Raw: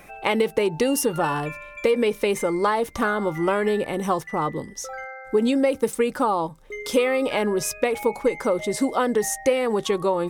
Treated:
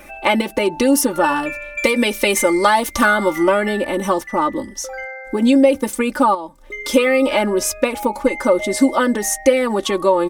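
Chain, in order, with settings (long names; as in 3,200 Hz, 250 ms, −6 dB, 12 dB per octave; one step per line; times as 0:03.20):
0:01.77–0:03.43: high-shelf EQ 2,400 Hz +9 dB
0:06.34–0:06.84: downward compressor 10 to 1, threshold −31 dBFS, peak gain reduction 11 dB
comb filter 3.4 ms, depth 84%
level +4 dB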